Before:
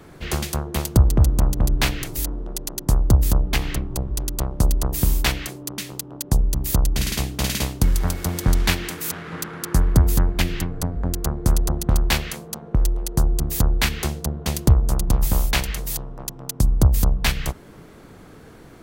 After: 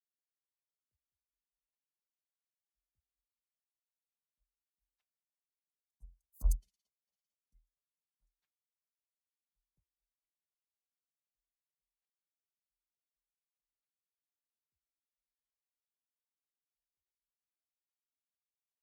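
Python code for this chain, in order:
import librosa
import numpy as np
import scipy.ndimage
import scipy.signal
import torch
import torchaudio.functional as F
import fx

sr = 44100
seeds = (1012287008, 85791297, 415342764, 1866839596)

y = fx.bin_expand(x, sr, power=3.0)
y = fx.doppler_pass(y, sr, speed_mps=17, closest_m=1.5, pass_at_s=6.53)
y = fx.upward_expand(y, sr, threshold_db=-53.0, expansion=2.5)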